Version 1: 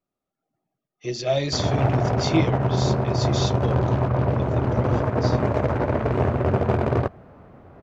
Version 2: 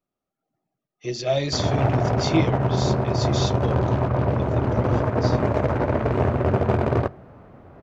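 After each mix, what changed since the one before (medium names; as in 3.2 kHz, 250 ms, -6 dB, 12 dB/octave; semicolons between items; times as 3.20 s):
reverb: on, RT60 0.70 s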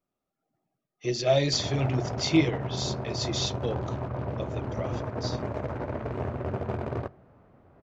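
background -11.0 dB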